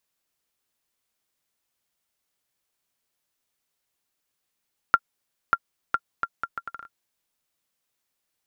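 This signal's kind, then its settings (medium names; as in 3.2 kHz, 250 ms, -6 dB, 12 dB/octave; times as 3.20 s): bouncing ball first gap 0.59 s, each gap 0.7, 1.38 kHz, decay 51 ms -4.5 dBFS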